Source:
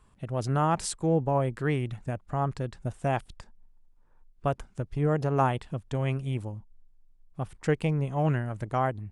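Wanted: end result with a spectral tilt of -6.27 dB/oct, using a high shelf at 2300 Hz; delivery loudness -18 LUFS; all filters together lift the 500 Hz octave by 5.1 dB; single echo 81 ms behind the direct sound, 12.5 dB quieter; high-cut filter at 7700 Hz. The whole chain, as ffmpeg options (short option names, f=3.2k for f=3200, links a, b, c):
-af "lowpass=7.7k,equalizer=f=500:t=o:g=6.5,highshelf=f=2.3k:g=-6.5,aecho=1:1:81:0.237,volume=9dB"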